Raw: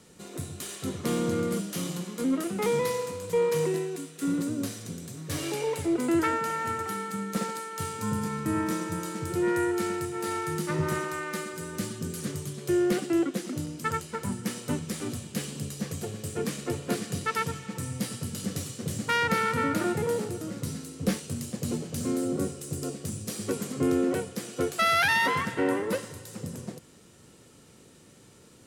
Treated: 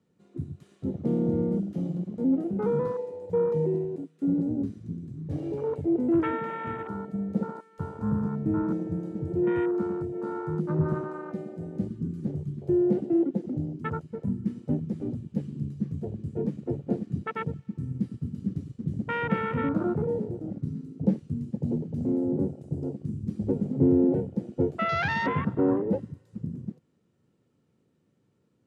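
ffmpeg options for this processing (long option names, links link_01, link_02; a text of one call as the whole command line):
ffmpeg -i in.wav -filter_complex "[0:a]asettb=1/sr,asplit=3[link_01][link_02][link_03];[link_01]atrim=end=16.504[link_04];[link_02]atrim=start=16.5:end=20.77,asetpts=PTS-STARTPTS,afade=type=in:duration=0.004:curve=qsin,afade=type=out:start_time=4.266:duration=0.004:curve=qsin,aeval=exprs='sgn(val(0))*max(abs(val(0))-0.00282,0)':channel_layout=same[link_05];[link_03]atrim=start=20.766[link_06];[link_04][link_05]acrossfade=duration=0.004:curve1=hsin:curve2=qsin[link_07];[link_07][link_06]acrossfade=duration=0.004:curve1=qsin:curve2=hsin,asettb=1/sr,asplit=3[link_08][link_09][link_10];[link_08]atrim=end=23.234[link_11];[link_09]atrim=start=23.23:end=26.18,asetpts=PTS-STARTPTS,afade=type=in:duration=0.004:curve=qsin,afade=type=out:start_time=2.946:duration=0.004:curve=qsin,lowshelf=frequency=200:gain=6.5[link_12];[link_10]atrim=start=26.176[link_13];[link_11][link_12]acrossfade=duration=0.004:curve1=hsin:curve2=qsin[link_14];[link_14][link_13]acrossfade=duration=0.004:curve1=qsin:curve2=hsin,highpass=150,afwtdn=0.0316,aemphasis=mode=reproduction:type=riaa,volume=-3dB" out.wav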